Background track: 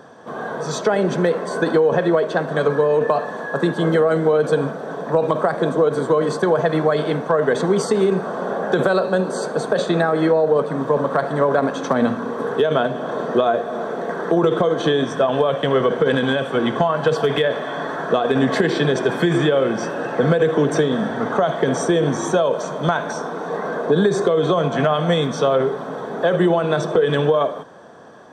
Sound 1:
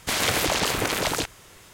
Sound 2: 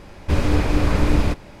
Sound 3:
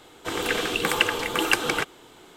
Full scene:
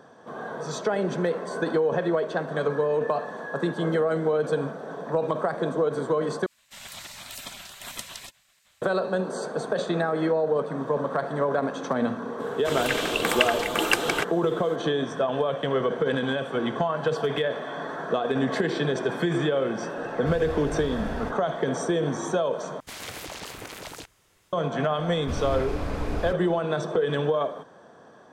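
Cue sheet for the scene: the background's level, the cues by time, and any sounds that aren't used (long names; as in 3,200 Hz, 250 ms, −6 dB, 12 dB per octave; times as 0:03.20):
background track −7.5 dB
0:06.46: overwrite with 3 −6.5 dB + gate on every frequency bin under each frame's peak −15 dB weak
0:12.40: mix in 3 −1 dB
0:19.97: mix in 2 −16.5 dB + lower of the sound and its delayed copy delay 1.1 ms
0:22.80: overwrite with 1 −14.5 dB
0:24.99: mix in 2 −12.5 dB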